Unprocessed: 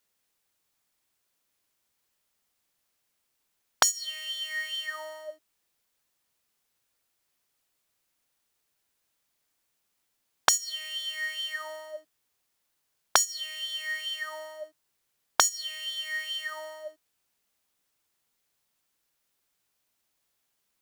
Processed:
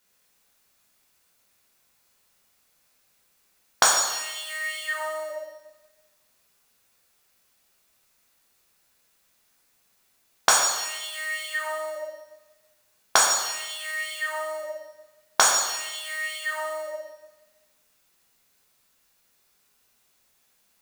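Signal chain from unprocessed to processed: in parallel at -1 dB: compressor, threshold -36 dBFS, peak gain reduction 19 dB; on the sum: notch 3100 Hz, Q 20; plate-style reverb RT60 1.1 s, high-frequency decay 0.95×, DRR -4 dB

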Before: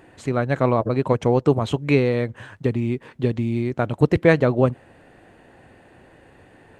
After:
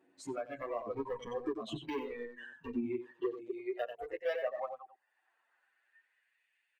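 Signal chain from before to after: reverse delay 0.135 s, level -11 dB; reverb removal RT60 0.89 s; de-hum 67.93 Hz, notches 2; compressor 3:1, threshold -28 dBFS, peak gain reduction 13.5 dB; high-pass sweep 260 Hz -> 2300 Hz, 2.82–6.45; hard clip -24 dBFS, distortion -9 dB; echo 92 ms -5 dB; spectral noise reduction 17 dB; endless flanger 8.3 ms +0.34 Hz; gain -3 dB

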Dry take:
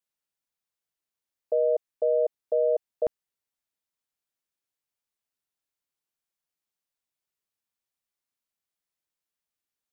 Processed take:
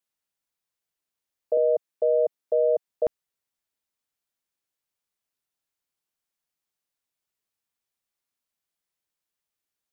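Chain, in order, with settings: 1.57–2.88 HPF 150 Hz 24 dB/oct; gain +2 dB

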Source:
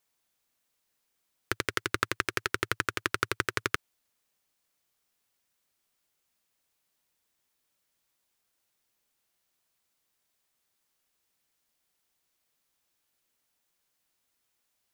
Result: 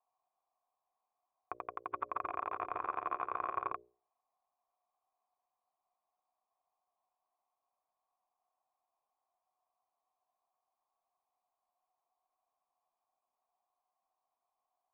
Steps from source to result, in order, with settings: 1.7–3.72 regenerating reverse delay 0.199 s, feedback 55%, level -1 dB; bell 120 Hz -7.5 dB 1.6 oct; notches 60/120/180/240/300/360/420/480/540/600 Hz; limiter -9.5 dBFS, peak gain reduction 5 dB; vocal tract filter a; gain +13 dB

